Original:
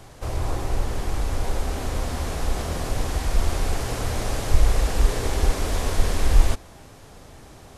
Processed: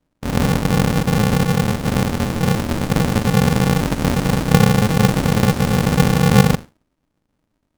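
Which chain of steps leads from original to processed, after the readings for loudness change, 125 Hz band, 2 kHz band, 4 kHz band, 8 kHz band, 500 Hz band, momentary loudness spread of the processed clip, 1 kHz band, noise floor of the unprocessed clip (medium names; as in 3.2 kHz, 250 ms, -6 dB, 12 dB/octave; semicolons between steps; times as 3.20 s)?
+9.5 dB, +11.0 dB, +10.5 dB, +8.0 dB, +5.5 dB, +10.0 dB, 6 LU, +9.5 dB, -46 dBFS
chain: tape echo 133 ms, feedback 60%, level -12 dB, low-pass 3.9 kHz; in parallel at -1 dB: compressor with a negative ratio -22 dBFS, ratio -1; on the sum: expander -17 dBFS; resonant low shelf 210 Hz +10.5 dB, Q 3; polarity switched at an audio rate 160 Hz; trim -10.5 dB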